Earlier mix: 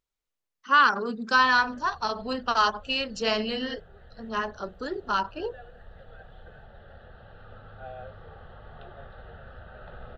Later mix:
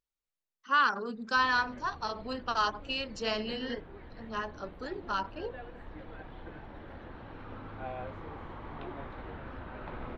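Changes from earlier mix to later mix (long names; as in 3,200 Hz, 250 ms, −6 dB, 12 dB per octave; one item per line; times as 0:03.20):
speech −6.5 dB
background: remove phaser with its sweep stopped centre 1,500 Hz, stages 8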